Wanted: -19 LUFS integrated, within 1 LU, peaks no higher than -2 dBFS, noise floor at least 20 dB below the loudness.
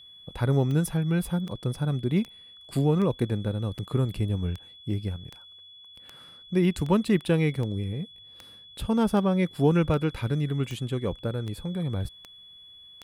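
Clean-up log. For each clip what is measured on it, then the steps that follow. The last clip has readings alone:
clicks found 17; steady tone 3.4 kHz; tone level -47 dBFS; loudness -27.0 LUFS; peak level -10.5 dBFS; loudness target -19.0 LUFS
-> de-click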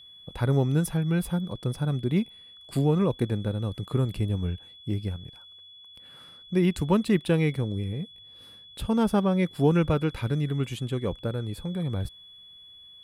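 clicks found 0; steady tone 3.4 kHz; tone level -47 dBFS
-> band-stop 3.4 kHz, Q 30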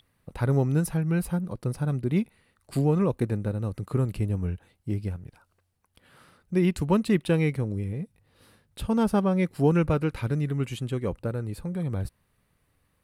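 steady tone not found; loudness -27.0 LUFS; peak level -11.0 dBFS; loudness target -19.0 LUFS
-> trim +8 dB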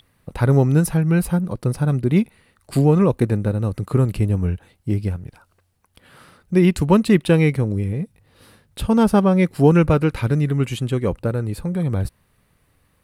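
loudness -19.0 LUFS; peak level -3.0 dBFS; noise floor -63 dBFS

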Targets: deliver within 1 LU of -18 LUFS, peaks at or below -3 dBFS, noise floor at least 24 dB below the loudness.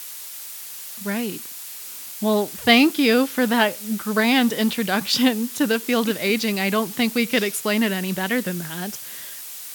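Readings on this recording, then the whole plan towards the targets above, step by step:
noise floor -36 dBFS; noise floor target -45 dBFS; loudness -21.0 LUFS; peak level -2.5 dBFS; loudness target -18.0 LUFS
-> noise print and reduce 9 dB; trim +3 dB; peak limiter -3 dBFS

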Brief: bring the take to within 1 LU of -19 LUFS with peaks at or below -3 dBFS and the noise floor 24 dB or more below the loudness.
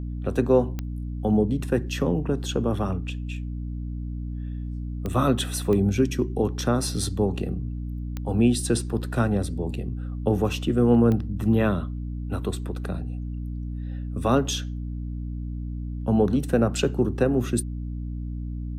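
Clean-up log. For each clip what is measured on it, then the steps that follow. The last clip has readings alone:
clicks found 5; hum 60 Hz; highest harmonic 300 Hz; hum level -28 dBFS; loudness -26.0 LUFS; peak level -7.0 dBFS; loudness target -19.0 LUFS
-> de-click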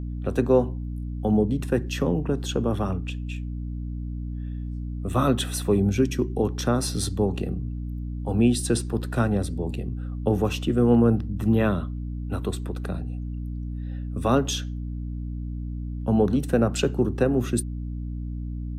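clicks found 0; hum 60 Hz; highest harmonic 300 Hz; hum level -28 dBFS
-> hum notches 60/120/180/240/300 Hz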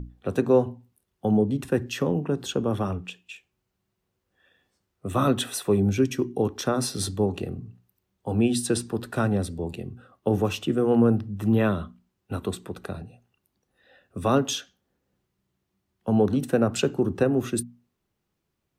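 hum not found; loudness -25.5 LUFS; peak level -7.5 dBFS; loudness target -19.0 LUFS
-> trim +6.5 dB; peak limiter -3 dBFS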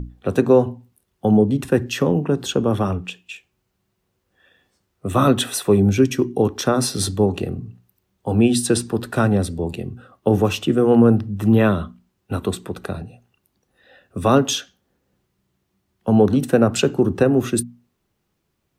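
loudness -19.0 LUFS; peak level -3.0 dBFS; noise floor -72 dBFS

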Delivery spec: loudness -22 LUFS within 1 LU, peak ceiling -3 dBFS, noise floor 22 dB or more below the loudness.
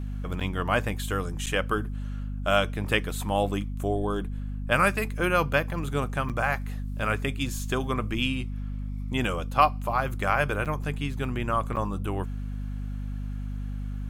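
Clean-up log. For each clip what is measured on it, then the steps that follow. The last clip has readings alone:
dropouts 5; longest dropout 7.6 ms; hum 50 Hz; highest harmonic 250 Hz; hum level -30 dBFS; loudness -28.5 LUFS; peak level -6.5 dBFS; loudness target -22.0 LUFS
-> interpolate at 0.40/1.46/6.29/10.65/11.76 s, 7.6 ms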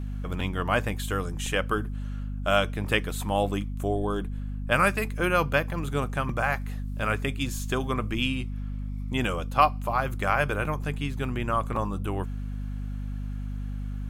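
dropouts 0; hum 50 Hz; highest harmonic 250 Hz; hum level -30 dBFS
-> de-hum 50 Hz, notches 5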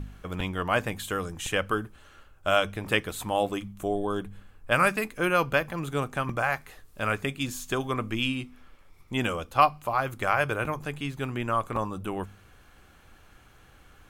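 hum not found; loudness -28.5 LUFS; peak level -6.5 dBFS; loudness target -22.0 LUFS
-> trim +6.5 dB; peak limiter -3 dBFS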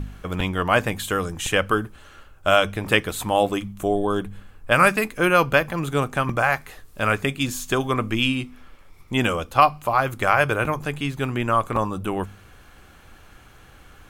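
loudness -22.0 LUFS; peak level -3.0 dBFS; noise floor -49 dBFS

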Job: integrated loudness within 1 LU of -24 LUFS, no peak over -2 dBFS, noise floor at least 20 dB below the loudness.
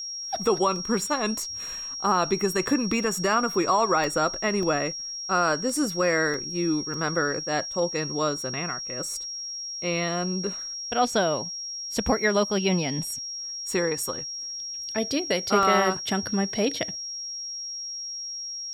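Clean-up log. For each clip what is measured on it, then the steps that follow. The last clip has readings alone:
dropouts 6; longest dropout 1.2 ms; steady tone 5.6 kHz; tone level -32 dBFS; loudness -26.0 LUFS; peak level -9.0 dBFS; loudness target -24.0 LUFS
-> interpolate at 0.76/4.04/4.63/6.34/6.94/15.63 s, 1.2 ms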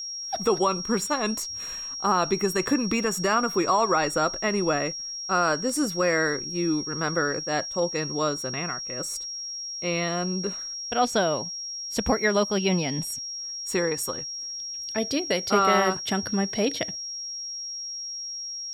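dropouts 0; steady tone 5.6 kHz; tone level -32 dBFS
-> band-stop 5.6 kHz, Q 30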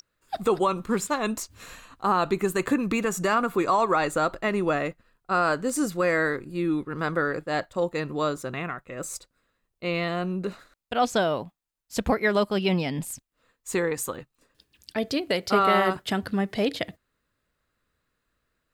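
steady tone not found; loudness -26.5 LUFS; peak level -9.0 dBFS; loudness target -24.0 LUFS
-> trim +2.5 dB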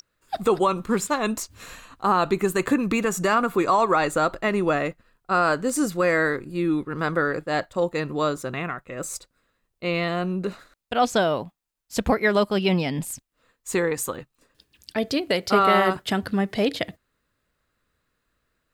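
loudness -24.0 LUFS; peak level -6.5 dBFS; noise floor -75 dBFS

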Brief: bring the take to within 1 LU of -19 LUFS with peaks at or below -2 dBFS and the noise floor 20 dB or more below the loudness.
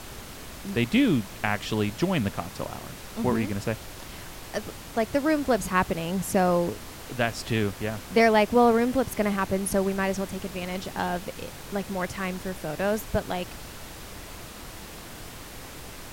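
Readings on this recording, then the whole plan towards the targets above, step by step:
noise floor -42 dBFS; noise floor target -47 dBFS; loudness -26.5 LUFS; peak level -7.0 dBFS; loudness target -19.0 LUFS
-> noise print and reduce 6 dB; trim +7.5 dB; peak limiter -2 dBFS

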